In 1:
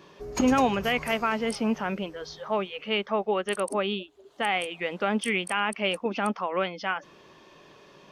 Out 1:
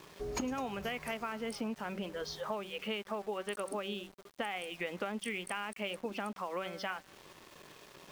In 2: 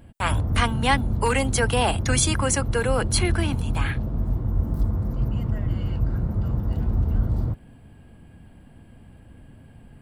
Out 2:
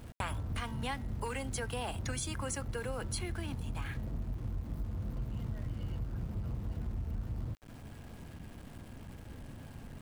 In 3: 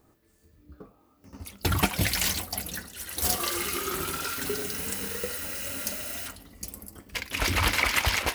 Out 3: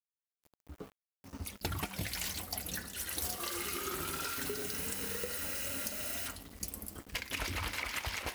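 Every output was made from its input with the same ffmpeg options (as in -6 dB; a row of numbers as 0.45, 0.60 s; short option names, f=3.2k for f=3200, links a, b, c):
-af "bandreject=f=191.9:t=h:w=4,bandreject=f=383.8:t=h:w=4,bandreject=f=575.7:t=h:w=4,bandreject=f=767.6:t=h:w=4,bandreject=f=959.5:t=h:w=4,bandreject=f=1.1514k:t=h:w=4,bandreject=f=1.3433k:t=h:w=4,bandreject=f=1.5352k:t=h:w=4,bandreject=f=1.7271k:t=h:w=4,bandreject=f=1.919k:t=h:w=4,bandreject=f=2.1109k:t=h:w=4,acompressor=threshold=-34dB:ratio=10,aeval=exprs='val(0)*gte(abs(val(0)),0.00299)':c=same"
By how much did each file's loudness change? -11.0, -15.5, -9.0 LU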